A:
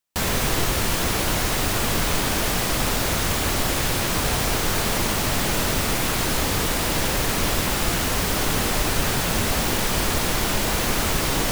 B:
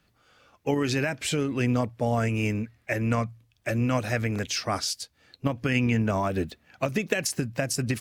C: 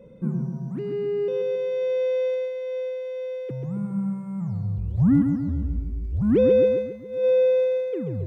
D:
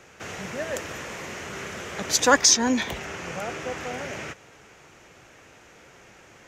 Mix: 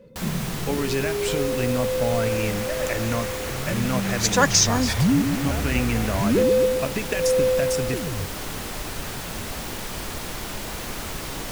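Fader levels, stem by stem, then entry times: −9.5, −1.0, −1.5, −1.0 decibels; 0.00, 0.00, 0.00, 2.10 seconds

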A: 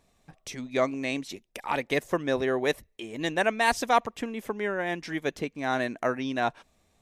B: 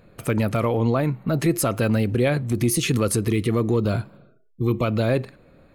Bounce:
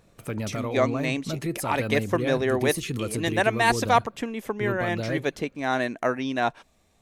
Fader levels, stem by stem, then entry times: +2.5, −9.0 decibels; 0.00, 0.00 seconds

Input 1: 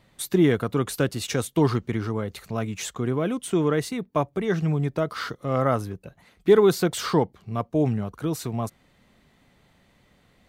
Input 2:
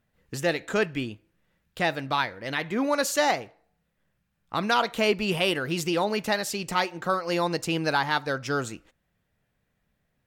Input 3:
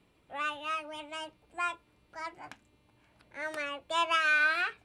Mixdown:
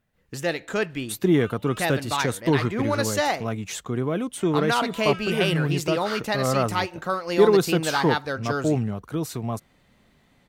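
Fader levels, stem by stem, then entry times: −0.5, −0.5, −13.5 decibels; 0.90, 0.00, 1.00 seconds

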